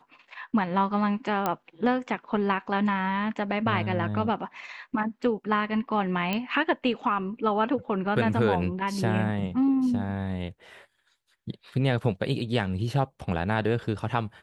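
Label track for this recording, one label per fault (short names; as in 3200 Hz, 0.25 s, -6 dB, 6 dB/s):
1.460000	1.460000	pop -12 dBFS
6.330000	6.330000	pop -14 dBFS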